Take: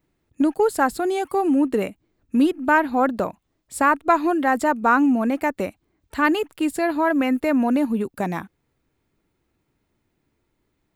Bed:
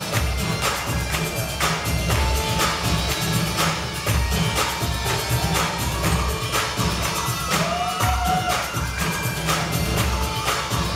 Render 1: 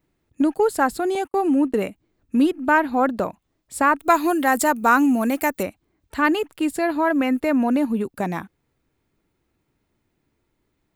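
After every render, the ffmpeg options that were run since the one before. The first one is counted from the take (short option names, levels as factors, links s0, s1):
-filter_complex "[0:a]asettb=1/sr,asplit=3[s0][s1][s2];[s0]atrim=end=1.154[s3];[s1]atrim=start=1.15:end=1.87,asetpts=PTS-STARTPTS,afade=t=in:d=0.004:c=qsin,afade=t=out:st=0.716:d=0.004:c=qsin,agate=range=0.00631:threshold=0.02:ratio=16:release=100:detection=peak[s4];[s2]atrim=start=1.866[s5];[s3][s4]acrossfade=d=0.004:c1=hsin:c2=qsin[s6];[s6][s5]acrossfade=d=0.004:c1=qsin:c2=hsin,asettb=1/sr,asplit=3[s7][s8][s9];[s7]atrim=end=3.994[s10];[s8]atrim=start=3.99:end=5.63,asetpts=PTS-STARTPTS,afade=t=in:d=0.004:c=qsin,afade=t=out:st=1.636:d=0.004:c=qsin,aemphasis=mode=production:type=75kf[s11];[s9]atrim=start=5.626[s12];[s10][s11]acrossfade=d=0.004:c1=hsin:c2=qsin[s13];[s13][s12]acrossfade=d=0.004:c1=qsin:c2=hsin"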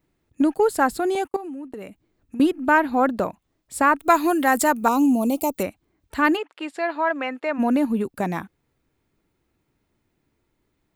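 -filter_complex "[0:a]asettb=1/sr,asplit=3[s0][s1][s2];[s0]atrim=end=1.364[s3];[s1]atrim=start=1.36:end=2.4,asetpts=PTS-STARTPTS,afade=t=in:d=0.004:c=qsin,afade=t=out:st=1.036:d=0.004:c=qsin,acompressor=threshold=0.0251:ratio=8:attack=3.2:release=140:knee=1:detection=peak[s4];[s2]atrim=start=2.396[s5];[s3][s4]acrossfade=d=0.004:c1=hsin:c2=qsin[s6];[s6][s5]acrossfade=d=0.004:c1=qsin:c2=hsin,asettb=1/sr,asplit=3[s7][s8][s9];[s7]atrim=end=4.884[s10];[s8]atrim=start=4.88:end=5.58,asetpts=PTS-STARTPTS,afade=t=in:d=0.004:c=qsin,afade=t=out:st=0.696:d=0.004:c=qsin,asuperstop=centerf=1700:order=4:qfactor=0.84[s11];[s9]atrim=start=5.576[s12];[s10][s11]acrossfade=d=0.004:c1=hsin:c2=qsin[s13];[s13][s12]acrossfade=d=0.004:c1=qsin:c2=hsin,asplit=3[s14][s15][s16];[s14]afade=t=out:st=6.36:d=0.02[s17];[s15]highpass=550,lowpass=3900,afade=t=in:st=6.36:d=0.02,afade=t=out:st=7.58:d=0.02[s18];[s16]afade=t=in:st=7.58:d=0.02[s19];[s17][s18][s19]amix=inputs=3:normalize=0"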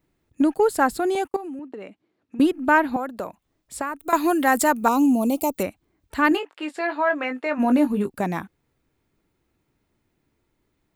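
-filter_complex "[0:a]asettb=1/sr,asplit=3[s0][s1][s2];[s0]atrim=end=1.594[s3];[s1]atrim=start=1.59:end=2.39,asetpts=PTS-STARTPTS,afade=t=in:d=0.004:c=qsin,afade=t=out:st=0.796:d=0.004:c=qsin,highpass=220,lowpass=4500[s4];[s2]atrim=start=2.386[s5];[s3][s4]acrossfade=d=0.004:c1=hsin:c2=qsin[s6];[s6][s5]acrossfade=d=0.004:c1=qsin:c2=hsin,asettb=1/sr,asplit=3[s7][s8][s9];[s7]atrim=end=2.964[s10];[s8]atrim=start=2.96:end=4.13,asetpts=PTS-STARTPTS,afade=t=in:d=0.004:c=qsin,afade=t=out:st=1.166:d=0.004:c=qsin,acrossover=split=350|7500[s11][s12][s13];[s11]acompressor=threshold=0.01:ratio=4[s14];[s12]acompressor=threshold=0.0398:ratio=4[s15];[s13]acompressor=threshold=0.00891:ratio=4[s16];[s14][s15][s16]amix=inputs=3:normalize=0[s17];[s9]atrim=start=4.126[s18];[s10][s17]acrossfade=d=0.004:c1=hsin:c2=qsin[s19];[s19][s18]acrossfade=d=0.004:c1=qsin:c2=hsin,asettb=1/sr,asplit=3[s20][s21][s22];[s20]atrim=end=6.294[s23];[s21]atrim=start=6.29:end=8.16,asetpts=PTS-STARTPTS,afade=t=in:d=0.004:c=qsin,afade=t=out:st=1.866:d=0.004:c=qsin,asplit=2[s24][s25];[s25]adelay=20,volume=0.447[s26];[s24][s26]amix=inputs=2:normalize=0,atrim=end_sample=82467[s27];[s22]atrim=start=8.156[s28];[s23][s27]acrossfade=d=0.004:c1=hsin:c2=qsin[s29];[s29][s28]acrossfade=d=0.004:c1=qsin:c2=hsin"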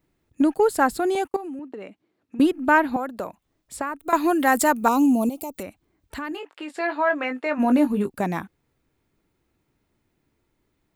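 -filter_complex "[0:a]asettb=1/sr,asplit=3[s0][s1][s2];[s0]atrim=end=3.764[s3];[s1]atrim=start=3.76:end=4.4,asetpts=PTS-STARTPTS,afade=t=in:d=0.004:c=qsin,afade=t=out:st=0.636:d=0.004:c=qsin,highshelf=f=4600:g=-5[s4];[s2]atrim=start=4.396[s5];[s3][s4]acrossfade=d=0.004:c1=hsin:c2=qsin[s6];[s6][s5]acrossfade=d=0.004:c1=qsin:c2=hsin,asettb=1/sr,asplit=3[s7][s8][s9];[s7]atrim=end=5.294[s10];[s8]atrim=start=5.29:end=6.7,asetpts=PTS-STARTPTS,afade=t=in:d=0.004:c=qsin,afade=t=out:st=1.406:d=0.004:c=qsin,acompressor=threshold=0.0316:ratio=4:attack=3.2:release=140:knee=1:detection=peak[s11];[s9]atrim=start=6.696[s12];[s10][s11]acrossfade=d=0.004:c1=hsin:c2=qsin[s13];[s13][s12]acrossfade=d=0.004:c1=qsin:c2=hsin"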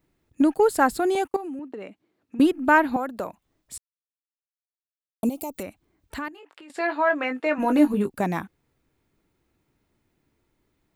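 -filter_complex "[0:a]asettb=1/sr,asplit=3[s0][s1][s2];[s0]atrim=end=6.284[s3];[s1]atrim=start=6.28:end=6.7,asetpts=PTS-STARTPTS,afade=t=in:d=0.004:c=qsin,afade=t=out:st=0.416:d=0.004:c=qsin,acompressor=threshold=0.00708:ratio=8:attack=3.2:release=140:knee=1:detection=peak[s4];[s2]atrim=start=6.696[s5];[s3][s4]acrossfade=d=0.004:c1=hsin:c2=qsin[s6];[s6][s5]acrossfade=d=0.004:c1=qsin:c2=hsin,asettb=1/sr,asplit=3[s7][s8][s9];[s7]atrim=end=7.394[s10];[s8]atrim=start=7.39:end=7.94,asetpts=PTS-STARTPTS,afade=t=in:d=0.004:c=qsin,afade=t=out:st=0.546:d=0.004:c=qsin,aecho=1:1:6.2:0.54,atrim=end_sample=24255[s11];[s9]atrim=start=7.936[s12];[s10][s11]acrossfade=d=0.004:c1=hsin:c2=qsin[s13];[s13][s12]acrossfade=d=0.004:c1=qsin:c2=hsin,asplit=3[s14][s15][s16];[s14]atrim=end=3.78,asetpts=PTS-STARTPTS,afade=t=out:st=3.776:d=0.004:c=hsin[s17];[s15]atrim=start=3.78:end=5.23,asetpts=PTS-STARTPTS,volume=0[s18];[s16]atrim=start=5.23,asetpts=PTS-STARTPTS,afade=t=in:d=0.004:c=hsin[s19];[s17][s18][s19]concat=n=3:v=0:a=1"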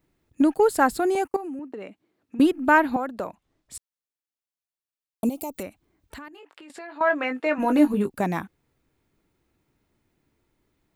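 -filter_complex "[0:a]asettb=1/sr,asplit=3[s0][s1][s2];[s0]atrim=end=1.044[s3];[s1]atrim=start=1.04:end=1.73,asetpts=PTS-STARTPTS,afade=t=in:d=0.004:c=qsin,afade=t=out:st=0.686:d=0.004:c=qsin,equalizer=f=3500:w=4.1:g=-10[s4];[s2]atrim=start=1.726[s5];[s3][s4]acrossfade=d=0.004:c1=hsin:c2=qsin[s6];[s6][s5]acrossfade=d=0.004:c1=qsin:c2=hsin,asettb=1/sr,asplit=3[s7][s8][s9];[s7]atrim=end=2.954[s10];[s8]atrim=start=2.95:end=3.75,asetpts=PTS-STARTPTS,afade=t=in:d=0.004:c=qsin,afade=t=out:st=0.796:d=0.004:c=qsin,highshelf=f=10000:g=-10.5[s11];[s9]atrim=start=3.746[s12];[s10][s11]acrossfade=d=0.004:c1=hsin:c2=qsin[s13];[s13][s12]acrossfade=d=0.004:c1=qsin:c2=hsin,asettb=1/sr,asplit=3[s14][s15][s16];[s14]atrim=end=5.674[s17];[s15]atrim=start=5.67:end=7.01,asetpts=PTS-STARTPTS,afade=t=in:d=0.004:c=qsin,afade=t=out:st=1.336:d=0.004:c=qsin,acompressor=threshold=0.0126:ratio=4:attack=3.2:release=140:knee=1:detection=peak[s18];[s16]atrim=start=7.006[s19];[s17][s18]acrossfade=d=0.004:c1=hsin:c2=qsin[s20];[s20][s19]acrossfade=d=0.004:c1=qsin:c2=hsin"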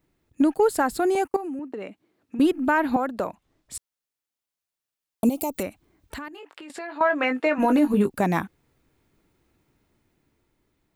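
-af "dynaudnorm=f=340:g=9:m=1.88,alimiter=limit=0.266:level=0:latency=1:release=125"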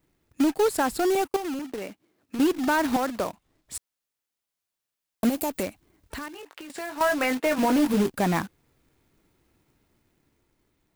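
-af "acrusher=bits=2:mode=log:mix=0:aa=0.000001,asoftclip=type=tanh:threshold=0.178"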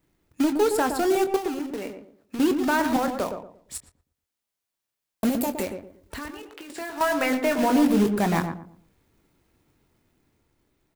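-filter_complex "[0:a]asplit=2[s0][s1];[s1]adelay=24,volume=0.282[s2];[s0][s2]amix=inputs=2:normalize=0,asplit=2[s3][s4];[s4]adelay=116,lowpass=f=890:p=1,volume=0.562,asplit=2[s5][s6];[s6]adelay=116,lowpass=f=890:p=1,volume=0.32,asplit=2[s7][s8];[s8]adelay=116,lowpass=f=890:p=1,volume=0.32,asplit=2[s9][s10];[s10]adelay=116,lowpass=f=890:p=1,volume=0.32[s11];[s5][s7][s9][s11]amix=inputs=4:normalize=0[s12];[s3][s12]amix=inputs=2:normalize=0"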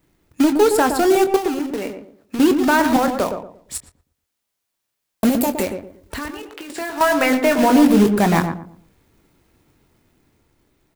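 -af "volume=2.24"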